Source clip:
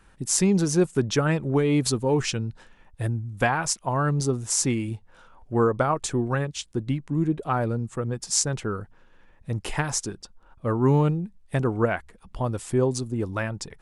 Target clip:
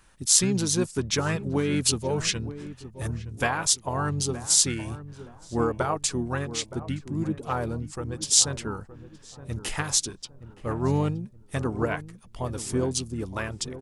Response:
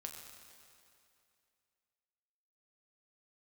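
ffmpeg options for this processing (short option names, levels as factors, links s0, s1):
-filter_complex "[0:a]highshelf=f=2800:g=11,asplit=2[s0][s1];[s1]asetrate=29433,aresample=44100,atempo=1.49831,volume=0.447[s2];[s0][s2]amix=inputs=2:normalize=0,asplit=2[s3][s4];[s4]adelay=919,lowpass=f=840:p=1,volume=0.237,asplit=2[s5][s6];[s6]adelay=919,lowpass=f=840:p=1,volume=0.37,asplit=2[s7][s8];[s8]adelay=919,lowpass=f=840:p=1,volume=0.37,asplit=2[s9][s10];[s10]adelay=919,lowpass=f=840:p=1,volume=0.37[s11];[s5][s7][s9][s11]amix=inputs=4:normalize=0[s12];[s3][s12]amix=inputs=2:normalize=0,volume=0.531"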